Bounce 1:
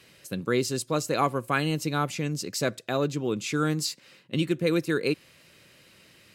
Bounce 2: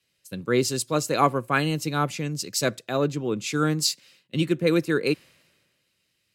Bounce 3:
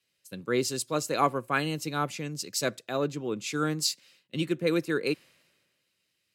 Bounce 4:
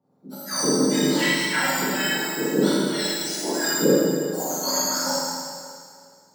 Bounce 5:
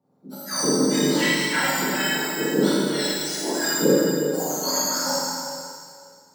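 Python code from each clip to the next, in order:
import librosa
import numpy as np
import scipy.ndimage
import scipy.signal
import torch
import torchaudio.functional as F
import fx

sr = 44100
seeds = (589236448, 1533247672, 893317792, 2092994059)

y1 = fx.band_widen(x, sr, depth_pct=70)
y1 = y1 * 10.0 ** (2.5 / 20.0)
y2 = fx.low_shelf(y1, sr, hz=120.0, db=-9.0)
y2 = y2 * 10.0 ** (-4.0 / 20.0)
y3 = fx.octave_mirror(y2, sr, pivot_hz=1500.0)
y3 = fx.rev_schroeder(y3, sr, rt60_s=2.1, comb_ms=27, drr_db=-8.0)
y4 = y3 + 10.0 ** (-12.0 / 20.0) * np.pad(y3, (int(364 * sr / 1000.0), 0))[:len(y3)]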